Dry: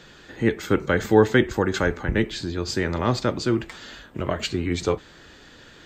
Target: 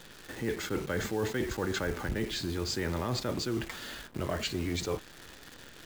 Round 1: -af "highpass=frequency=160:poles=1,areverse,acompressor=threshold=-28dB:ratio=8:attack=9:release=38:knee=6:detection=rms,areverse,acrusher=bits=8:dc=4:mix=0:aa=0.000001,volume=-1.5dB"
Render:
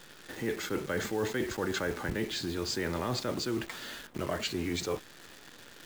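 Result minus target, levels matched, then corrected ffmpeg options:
125 Hz band −3.0 dB
-af "areverse,acompressor=threshold=-28dB:ratio=8:attack=9:release=38:knee=6:detection=rms,areverse,acrusher=bits=8:dc=4:mix=0:aa=0.000001,volume=-1.5dB"

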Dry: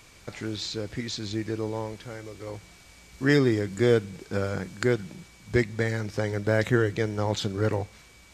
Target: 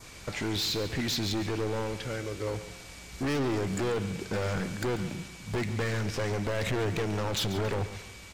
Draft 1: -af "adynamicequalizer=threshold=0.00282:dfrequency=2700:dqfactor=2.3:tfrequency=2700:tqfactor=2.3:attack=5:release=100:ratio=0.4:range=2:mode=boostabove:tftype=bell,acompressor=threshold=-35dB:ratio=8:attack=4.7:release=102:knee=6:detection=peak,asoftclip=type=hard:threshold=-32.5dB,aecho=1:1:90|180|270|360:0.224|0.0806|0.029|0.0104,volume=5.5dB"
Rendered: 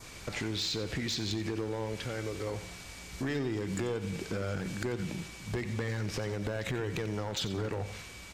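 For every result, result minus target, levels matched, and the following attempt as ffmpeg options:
downward compressor: peak gain reduction +10 dB; echo 49 ms early
-af "adynamicequalizer=threshold=0.00282:dfrequency=2700:dqfactor=2.3:tfrequency=2700:tqfactor=2.3:attack=5:release=100:ratio=0.4:range=2:mode=boostabove:tftype=bell,acompressor=threshold=-23.5dB:ratio=8:attack=4.7:release=102:knee=6:detection=peak,asoftclip=type=hard:threshold=-32.5dB,aecho=1:1:90|180|270|360:0.224|0.0806|0.029|0.0104,volume=5.5dB"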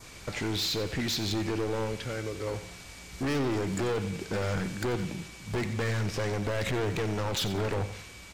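echo 49 ms early
-af "adynamicequalizer=threshold=0.00282:dfrequency=2700:dqfactor=2.3:tfrequency=2700:tqfactor=2.3:attack=5:release=100:ratio=0.4:range=2:mode=boostabove:tftype=bell,acompressor=threshold=-23.5dB:ratio=8:attack=4.7:release=102:knee=6:detection=peak,asoftclip=type=hard:threshold=-32.5dB,aecho=1:1:139|278|417|556:0.224|0.0806|0.029|0.0104,volume=5.5dB"

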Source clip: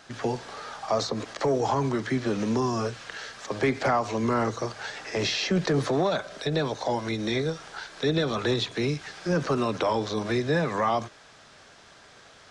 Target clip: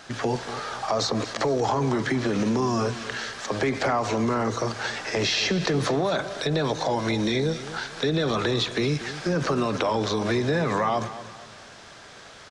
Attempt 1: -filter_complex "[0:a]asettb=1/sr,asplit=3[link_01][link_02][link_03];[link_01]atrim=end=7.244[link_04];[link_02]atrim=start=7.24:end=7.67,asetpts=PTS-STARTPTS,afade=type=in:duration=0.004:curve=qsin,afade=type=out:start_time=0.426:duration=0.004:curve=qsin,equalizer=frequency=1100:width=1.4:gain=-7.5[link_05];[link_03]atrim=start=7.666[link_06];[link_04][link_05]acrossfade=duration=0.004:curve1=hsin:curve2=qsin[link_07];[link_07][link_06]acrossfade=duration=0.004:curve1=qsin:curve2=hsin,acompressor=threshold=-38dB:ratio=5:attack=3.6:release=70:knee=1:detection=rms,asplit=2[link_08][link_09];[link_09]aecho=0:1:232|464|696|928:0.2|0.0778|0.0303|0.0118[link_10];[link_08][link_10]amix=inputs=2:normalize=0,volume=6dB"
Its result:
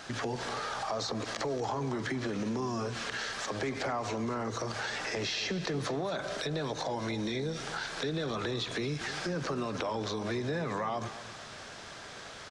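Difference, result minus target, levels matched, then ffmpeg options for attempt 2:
downward compressor: peak gain reduction +9.5 dB
-filter_complex "[0:a]asettb=1/sr,asplit=3[link_01][link_02][link_03];[link_01]atrim=end=7.244[link_04];[link_02]atrim=start=7.24:end=7.67,asetpts=PTS-STARTPTS,afade=type=in:duration=0.004:curve=qsin,afade=type=out:start_time=0.426:duration=0.004:curve=qsin,equalizer=frequency=1100:width=1.4:gain=-7.5[link_05];[link_03]atrim=start=7.666[link_06];[link_04][link_05]acrossfade=duration=0.004:curve1=hsin:curve2=qsin[link_07];[link_07][link_06]acrossfade=duration=0.004:curve1=qsin:curve2=hsin,acompressor=threshold=-26dB:ratio=5:attack=3.6:release=70:knee=1:detection=rms,asplit=2[link_08][link_09];[link_09]aecho=0:1:232|464|696|928:0.2|0.0778|0.0303|0.0118[link_10];[link_08][link_10]amix=inputs=2:normalize=0,volume=6dB"

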